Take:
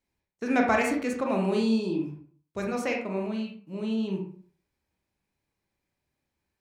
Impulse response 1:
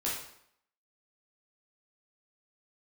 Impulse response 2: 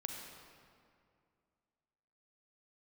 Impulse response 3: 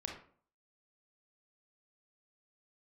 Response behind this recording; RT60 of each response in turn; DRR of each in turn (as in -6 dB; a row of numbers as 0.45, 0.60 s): 3; 0.70, 2.3, 0.50 s; -6.5, 2.0, 0.5 dB